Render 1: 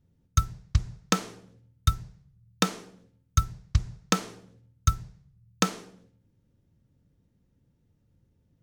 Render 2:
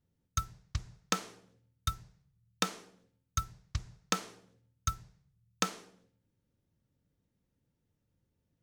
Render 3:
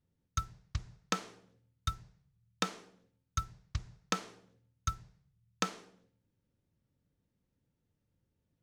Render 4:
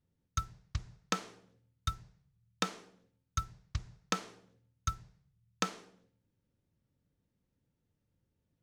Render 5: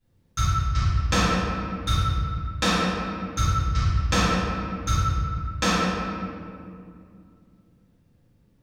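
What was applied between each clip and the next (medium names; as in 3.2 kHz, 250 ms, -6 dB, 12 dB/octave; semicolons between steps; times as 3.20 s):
bass shelf 360 Hz -8 dB; trim -5 dB
treble shelf 9.1 kHz -11.5 dB; trim -1 dB
no audible change
reverberation RT60 2.4 s, pre-delay 4 ms, DRR -16.5 dB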